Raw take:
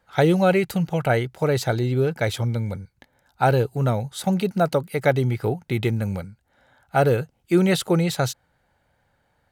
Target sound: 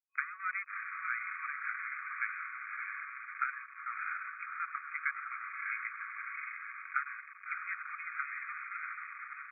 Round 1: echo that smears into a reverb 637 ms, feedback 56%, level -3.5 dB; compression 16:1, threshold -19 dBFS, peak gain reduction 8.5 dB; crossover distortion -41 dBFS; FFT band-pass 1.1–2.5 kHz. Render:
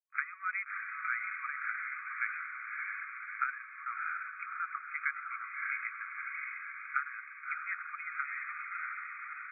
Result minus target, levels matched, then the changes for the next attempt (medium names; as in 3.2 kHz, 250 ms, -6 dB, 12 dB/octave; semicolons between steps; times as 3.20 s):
crossover distortion: distortion -10 dB
change: crossover distortion -31 dBFS